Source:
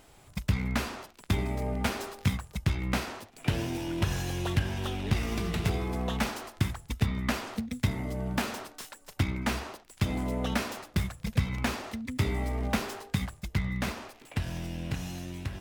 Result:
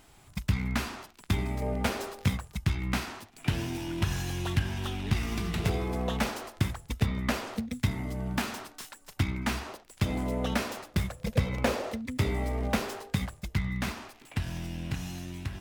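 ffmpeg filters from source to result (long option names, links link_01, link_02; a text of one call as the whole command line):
ffmpeg -i in.wav -af "asetnsamples=nb_out_samples=441:pad=0,asendcmd='1.62 equalizer g 4;2.48 equalizer g -8;5.58 equalizer g 3.5;7.74 equalizer g -5.5;9.67 equalizer g 2.5;11.1 equalizer g 14;11.97 equalizer g 4;13.53 equalizer g -6',equalizer=frequency=520:width_type=o:width=0.67:gain=-6" out.wav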